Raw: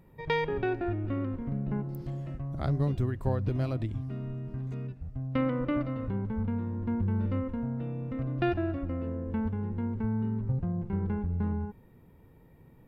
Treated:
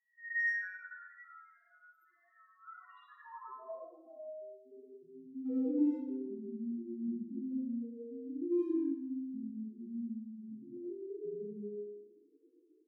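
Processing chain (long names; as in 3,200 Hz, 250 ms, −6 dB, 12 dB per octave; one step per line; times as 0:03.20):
high-pass filter sweep 1,700 Hz → 330 Hz, 0:02.73–0:05.05
spectral peaks only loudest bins 1
0:08.37–0:10.77: phaser with its sweep stopped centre 410 Hz, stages 6
far-end echo of a speakerphone 90 ms, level −10 dB
convolution reverb RT60 0.80 s, pre-delay 35 ms, DRR −9 dB
level −8 dB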